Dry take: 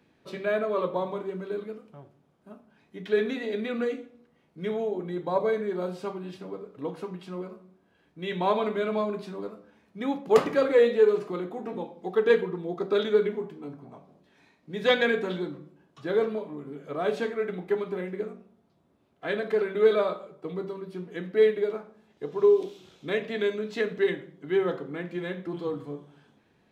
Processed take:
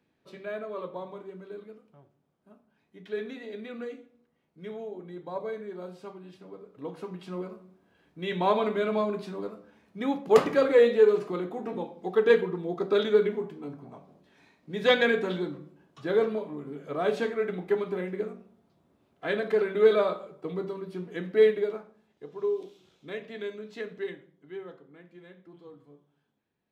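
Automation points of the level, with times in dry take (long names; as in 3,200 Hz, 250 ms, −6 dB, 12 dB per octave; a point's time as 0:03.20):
0:06.39 −9 dB
0:07.34 +0.5 dB
0:21.50 +0.5 dB
0:22.25 −9 dB
0:23.95 −9 dB
0:24.81 −17.5 dB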